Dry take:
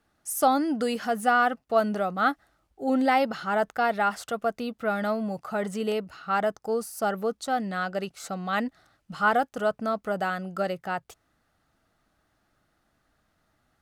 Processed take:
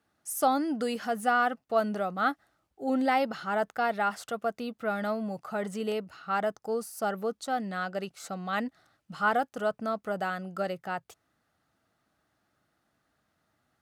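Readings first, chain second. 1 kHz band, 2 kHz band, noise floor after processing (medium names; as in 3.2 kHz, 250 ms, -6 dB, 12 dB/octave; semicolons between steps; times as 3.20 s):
-3.5 dB, -3.5 dB, -77 dBFS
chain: high-pass 84 Hz; trim -3.5 dB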